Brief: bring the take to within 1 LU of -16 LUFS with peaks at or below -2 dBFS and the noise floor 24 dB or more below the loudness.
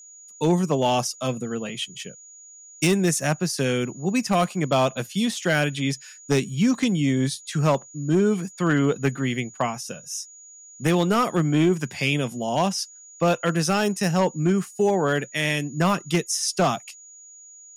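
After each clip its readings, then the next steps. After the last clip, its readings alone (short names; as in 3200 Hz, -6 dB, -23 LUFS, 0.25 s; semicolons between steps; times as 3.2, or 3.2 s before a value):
clipped 0.8%; flat tops at -13.0 dBFS; steady tone 6800 Hz; tone level -44 dBFS; loudness -23.5 LUFS; peak -13.0 dBFS; loudness target -16.0 LUFS
-> clip repair -13 dBFS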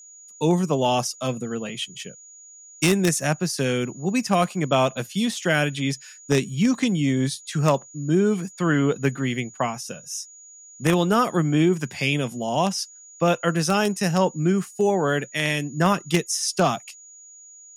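clipped 0.0%; steady tone 6800 Hz; tone level -44 dBFS
-> notch 6800 Hz, Q 30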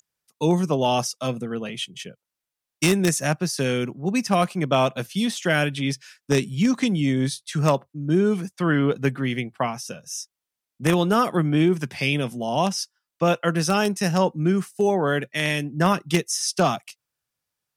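steady tone none; loudness -23.0 LUFS; peak -4.0 dBFS; loudness target -16.0 LUFS
-> gain +7 dB; limiter -2 dBFS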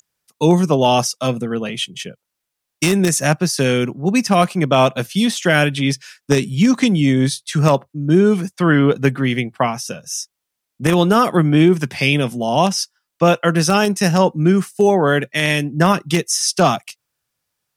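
loudness -16.5 LUFS; peak -2.0 dBFS; noise floor -79 dBFS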